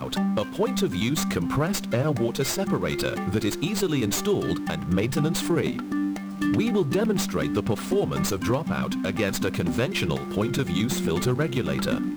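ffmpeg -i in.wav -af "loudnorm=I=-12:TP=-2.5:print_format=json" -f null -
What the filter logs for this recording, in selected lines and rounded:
"input_i" : "-25.5",
"input_tp" : "-13.6",
"input_lra" : "0.5",
"input_thresh" : "-35.5",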